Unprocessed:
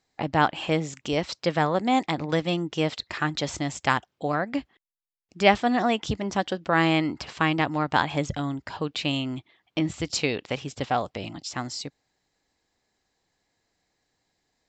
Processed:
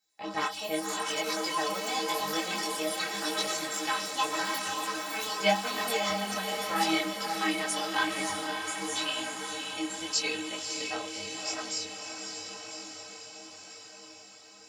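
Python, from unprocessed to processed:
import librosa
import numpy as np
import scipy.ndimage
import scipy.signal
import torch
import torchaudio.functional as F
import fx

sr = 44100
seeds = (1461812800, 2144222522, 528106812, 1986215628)

y = fx.echo_pitch(x, sr, ms=94, semitones=5, count=3, db_per_echo=-6.0)
y = fx.riaa(y, sr, side='recording')
y = fx.stiff_resonator(y, sr, f0_hz=94.0, decay_s=0.38, stiffness=0.03)
y = fx.echo_diffused(y, sr, ms=580, feedback_pct=69, wet_db=-4.5)
y = fx.detune_double(y, sr, cents=30)
y = F.gain(torch.from_numpy(y), 5.5).numpy()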